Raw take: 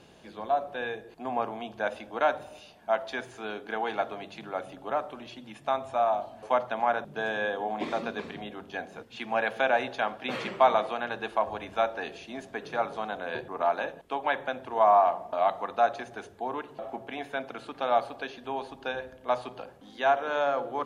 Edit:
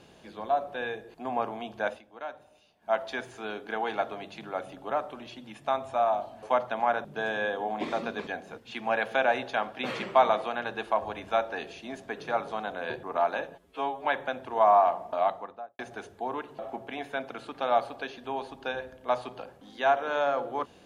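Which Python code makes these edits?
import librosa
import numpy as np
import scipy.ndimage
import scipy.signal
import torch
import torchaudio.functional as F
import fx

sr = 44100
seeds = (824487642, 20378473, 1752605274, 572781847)

y = fx.studio_fade_out(x, sr, start_s=15.33, length_s=0.66)
y = fx.edit(y, sr, fx.fade_down_up(start_s=1.89, length_s=1.04, db=-13.5, fade_s=0.13),
    fx.cut(start_s=8.27, length_s=0.45),
    fx.stretch_span(start_s=14.0, length_s=0.25, factor=2.0), tone=tone)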